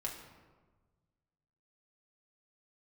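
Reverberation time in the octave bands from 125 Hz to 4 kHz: 2.1, 1.7, 1.4, 1.3, 1.0, 0.75 s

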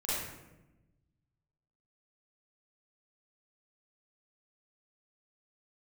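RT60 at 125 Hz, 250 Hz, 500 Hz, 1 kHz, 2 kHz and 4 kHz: 1.9, 1.5, 1.1, 0.85, 0.85, 0.60 s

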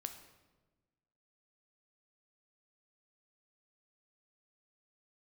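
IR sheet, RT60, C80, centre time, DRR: 1.2 s, 11.0 dB, 17 ms, 6.5 dB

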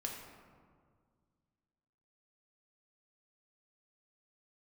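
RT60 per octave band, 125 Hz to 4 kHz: 2.6, 2.5, 2.0, 1.8, 1.3, 0.85 s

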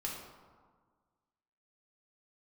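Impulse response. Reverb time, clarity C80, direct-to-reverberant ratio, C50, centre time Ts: 1.6 s, 4.5 dB, -3.0 dB, 2.0 dB, 63 ms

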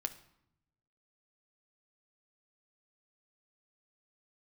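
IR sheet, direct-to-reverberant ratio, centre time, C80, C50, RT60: 7.0 dB, 6 ms, 17.5 dB, 14.5 dB, 0.75 s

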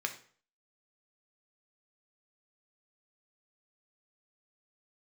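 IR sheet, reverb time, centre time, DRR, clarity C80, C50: 0.45 s, 10 ms, 4.0 dB, 15.5 dB, 11.5 dB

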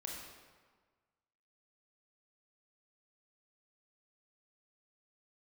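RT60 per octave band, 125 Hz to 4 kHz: 1.6, 1.5, 1.5, 1.5, 1.3, 1.0 s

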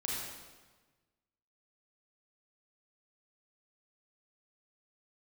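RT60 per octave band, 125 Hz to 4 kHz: 1.7, 1.5, 1.3, 1.3, 1.2, 1.1 s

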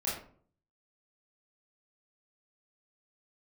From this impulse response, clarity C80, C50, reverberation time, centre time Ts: 8.0 dB, 3.0 dB, 0.50 s, 45 ms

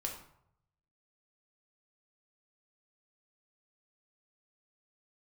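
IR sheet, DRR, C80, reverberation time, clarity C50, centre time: 0.0 dB, 9.5 dB, 0.70 s, 6.5 dB, 27 ms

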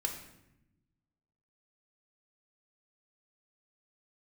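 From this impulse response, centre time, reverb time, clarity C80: 23 ms, 0.85 s, 10.0 dB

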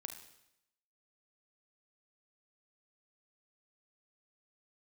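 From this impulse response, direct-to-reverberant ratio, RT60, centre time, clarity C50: 5.0 dB, 0.80 s, 19 ms, 8.0 dB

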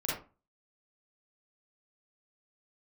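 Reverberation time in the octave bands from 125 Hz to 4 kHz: 0.45, 0.40, 0.30, 0.35, 0.25, 0.20 s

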